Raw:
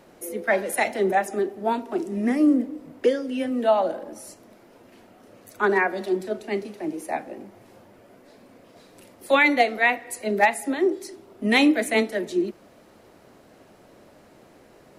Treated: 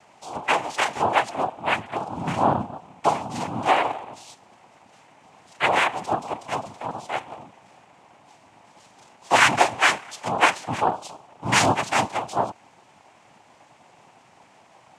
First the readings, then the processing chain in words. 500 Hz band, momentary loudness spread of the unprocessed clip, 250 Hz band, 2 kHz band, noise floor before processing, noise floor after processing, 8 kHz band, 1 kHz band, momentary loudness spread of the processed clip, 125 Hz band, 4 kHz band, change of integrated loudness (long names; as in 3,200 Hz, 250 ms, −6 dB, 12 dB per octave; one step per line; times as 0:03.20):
−4.5 dB, 13 LU, −8.5 dB, +1.0 dB, −53 dBFS, −55 dBFS, +6.0 dB, +5.0 dB, 15 LU, +8.0 dB, +5.0 dB, 0.0 dB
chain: cochlear-implant simulation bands 4
low shelf with overshoot 620 Hz −6.5 dB, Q 1.5
level +1.5 dB